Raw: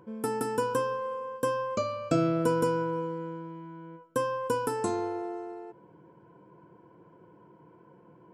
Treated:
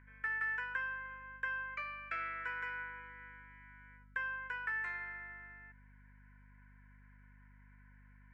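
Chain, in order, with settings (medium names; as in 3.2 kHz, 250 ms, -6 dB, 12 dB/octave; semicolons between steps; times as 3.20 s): Butterworth band-pass 1.9 kHz, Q 3.7; hum 50 Hz, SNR 17 dB; trim +12.5 dB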